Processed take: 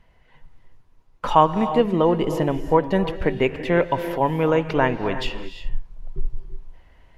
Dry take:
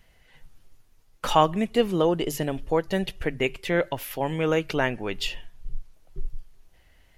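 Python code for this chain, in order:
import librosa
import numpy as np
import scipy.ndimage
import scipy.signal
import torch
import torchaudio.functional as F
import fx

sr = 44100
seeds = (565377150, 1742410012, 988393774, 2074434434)

p1 = fx.lowpass(x, sr, hz=1500.0, slope=6)
p2 = fx.peak_eq(p1, sr, hz=990.0, db=9.0, octaves=0.23)
p3 = fx.rider(p2, sr, range_db=4, speed_s=0.5)
p4 = p2 + (p3 * 10.0 ** (-1.0 / 20.0))
p5 = fx.rev_gated(p4, sr, seeds[0], gate_ms=380, shape='rising', drr_db=9.5)
y = p5 * 10.0 ** (-1.0 / 20.0)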